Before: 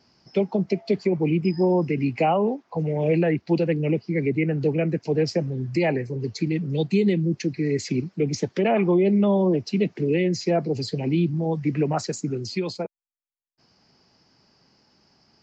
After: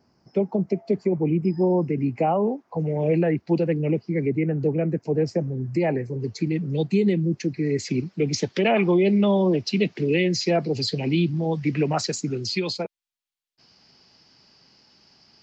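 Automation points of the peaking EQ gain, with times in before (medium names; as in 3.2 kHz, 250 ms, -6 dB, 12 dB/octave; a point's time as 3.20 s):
peaking EQ 3.6 kHz 1.7 oct
2.22 s -14 dB
2.89 s -6 dB
4.09 s -6 dB
4.61 s -13 dB
5.55 s -13 dB
6.39 s -3 dB
7.66 s -3 dB
8.41 s +8.5 dB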